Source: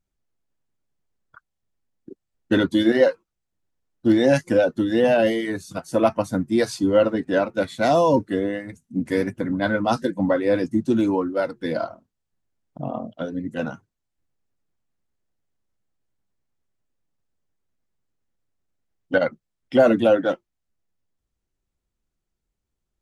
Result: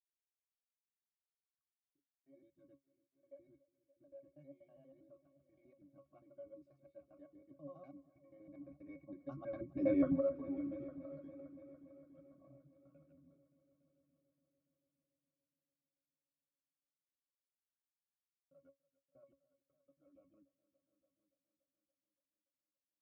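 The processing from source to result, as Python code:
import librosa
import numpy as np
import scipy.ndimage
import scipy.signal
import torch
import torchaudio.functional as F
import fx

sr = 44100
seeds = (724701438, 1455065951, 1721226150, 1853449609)

y = fx.block_reorder(x, sr, ms=86.0, group=7)
y = fx.doppler_pass(y, sr, speed_mps=21, closest_m=2.0, pass_at_s=9.95)
y = fx.octave_resonator(y, sr, note='C#', decay_s=0.14)
y = fx.echo_heads(y, sr, ms=286, heads='all three', feedback_pct=47, wet_db=-20.0)
y = y * 10.0 ** (1.5 / 20.0)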